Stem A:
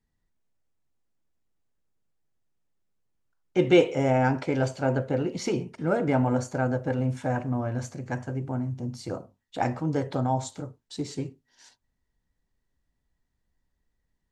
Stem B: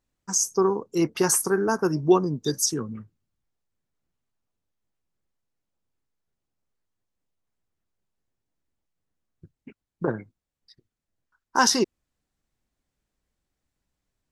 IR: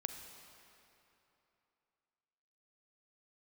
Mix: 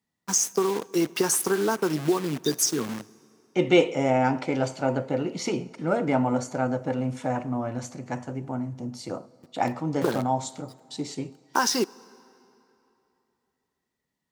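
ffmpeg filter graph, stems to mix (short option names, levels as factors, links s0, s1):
-filter_complex "[0:a]equalizer=f=410:t=o:w=0.77:g=-4,bandreject=f=1600:w=8.8,volume=1.12,asplit=2[s0][s1];[s1]volume=0.251[s2];[1:a]acompressor=threshold=0.0708:ratio=10,acrusher=bits=7:dc=4:mix=0:aa=0.000001,volume=1.33,asplit=2[s3][s4];[s4]volume=0.211[s5];[2:a]atrim=start_sample=2205[s6];[s2][s5]amix=inputs=2:normalize=0[s7];[s7][s6]afir=irnorm=-1:irlink=0[s8];[s0][s3][s8]amix=inputs=3:normalize=0,highpass=180"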